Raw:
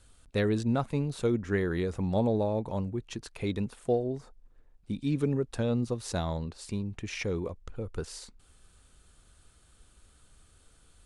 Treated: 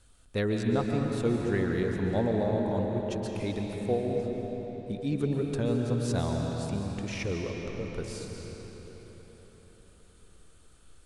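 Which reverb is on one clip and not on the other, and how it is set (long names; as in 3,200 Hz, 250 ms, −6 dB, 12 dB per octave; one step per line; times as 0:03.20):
comb and all-pass reverb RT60 4.8 s, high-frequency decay 0.75×, pre-delay 100 ms, DRR 1 dB
level −1.5 dB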